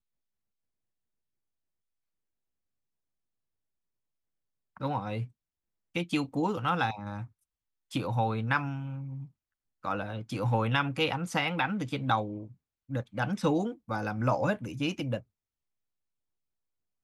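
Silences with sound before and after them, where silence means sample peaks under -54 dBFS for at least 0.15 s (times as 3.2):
5.31–5.95
7.27–7.91
9.29–9.83
12.54–12.89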